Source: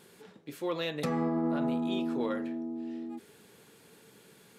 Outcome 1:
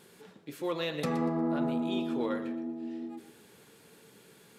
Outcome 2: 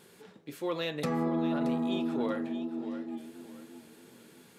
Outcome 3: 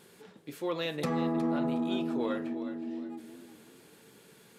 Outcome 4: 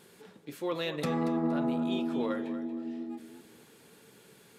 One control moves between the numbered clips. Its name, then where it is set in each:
modulated delay, time: 119 ms, 627 ms, 365 ms, 233 ms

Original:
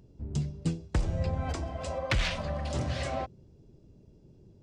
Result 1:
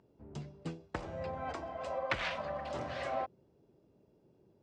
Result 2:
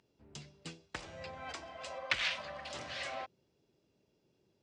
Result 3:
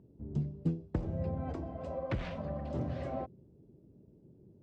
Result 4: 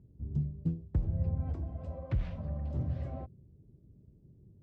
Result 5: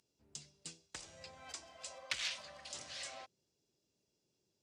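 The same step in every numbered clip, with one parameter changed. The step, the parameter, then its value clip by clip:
band-pass filter, frequency: 1 kHz, 2.6 kHz, 270 Hz, 100 Hz, 7.6 kHz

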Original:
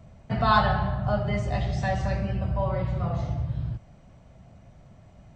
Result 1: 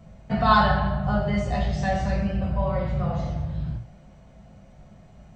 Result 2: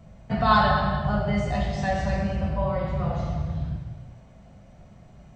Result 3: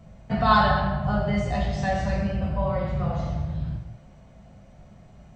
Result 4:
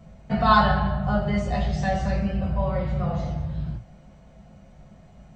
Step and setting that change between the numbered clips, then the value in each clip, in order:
gated-style reverb, gate: 150 ms, 490 ms, 280 ms, 80 ms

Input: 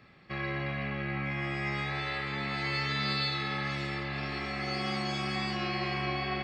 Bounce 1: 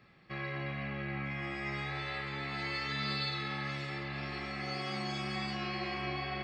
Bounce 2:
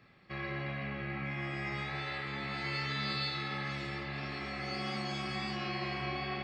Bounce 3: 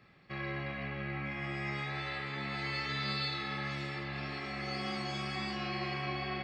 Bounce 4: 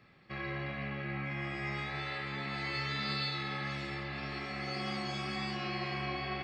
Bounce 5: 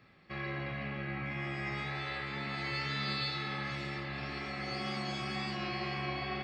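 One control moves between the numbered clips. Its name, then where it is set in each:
flange, rate: 0.23 Hz, 1.4 Hz, 0.48 Hz, 0.87 Hz, 2 Hz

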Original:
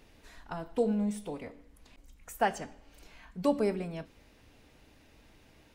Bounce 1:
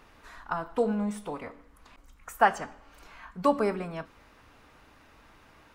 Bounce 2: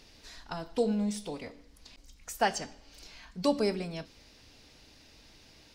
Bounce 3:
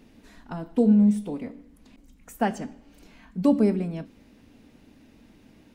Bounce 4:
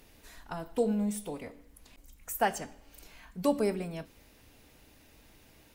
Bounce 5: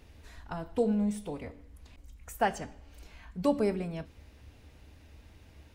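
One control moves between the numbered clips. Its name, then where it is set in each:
peaking EQ, frequency: 1.2 kHz, 4.9 kHz, 230 Hz, 16 kHz, 73 Hz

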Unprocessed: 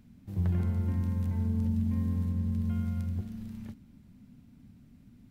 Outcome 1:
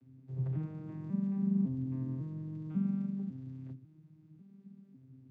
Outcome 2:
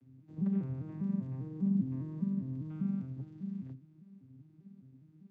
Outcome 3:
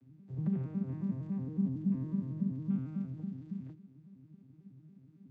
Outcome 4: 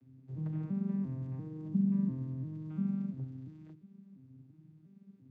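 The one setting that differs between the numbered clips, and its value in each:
vocoder on a broken chord, a note every: 548 ms, 200 ms, 92 ms, 346 ms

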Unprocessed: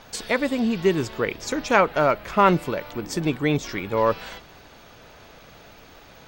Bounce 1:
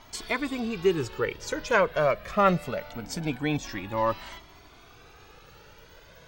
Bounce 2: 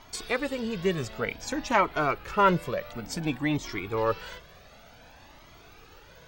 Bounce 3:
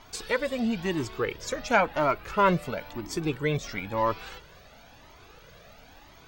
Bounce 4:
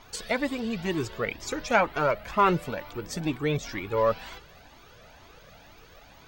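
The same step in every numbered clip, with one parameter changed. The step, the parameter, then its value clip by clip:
Shepard-style flanger, rate: 0.23 Hz, 0.55 Hz, 0.98 Hz, 2.1 Hz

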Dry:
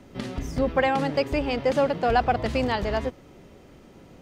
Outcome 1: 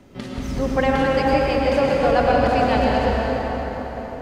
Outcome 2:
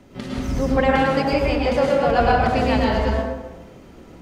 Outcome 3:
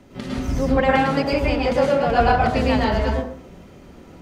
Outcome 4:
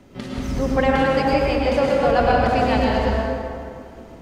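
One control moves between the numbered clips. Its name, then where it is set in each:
plate-style reverb, RT60: 5.1 s, 1.1 s, 0.51 s, 2.3 s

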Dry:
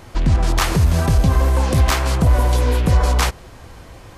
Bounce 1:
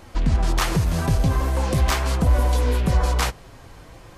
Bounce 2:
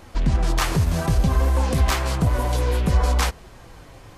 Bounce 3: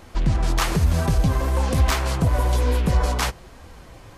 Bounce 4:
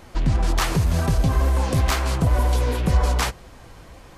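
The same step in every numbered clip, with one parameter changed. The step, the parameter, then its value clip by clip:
flange, rate: 0.42 Hz, 0.63 Hz, 1.1 Hz, 2 Hz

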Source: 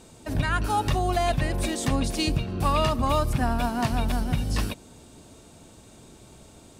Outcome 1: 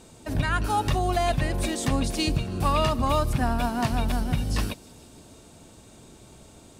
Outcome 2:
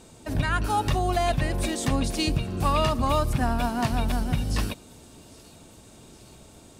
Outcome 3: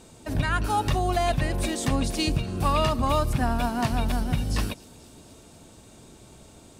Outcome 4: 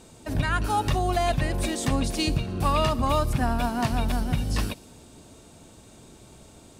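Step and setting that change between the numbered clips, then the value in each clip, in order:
feedback echo behind a high-pass, time: 155 ms, 812 ms, 240 ms, 60 ms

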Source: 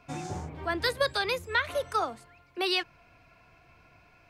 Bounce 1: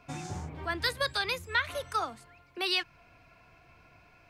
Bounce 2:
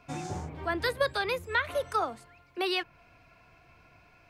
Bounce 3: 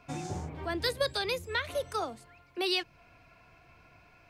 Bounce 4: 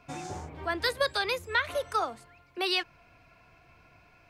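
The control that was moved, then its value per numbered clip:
dynamic bell, frequency: 480 Hz, 6 kHz, 1.3 kHz, 150 Hz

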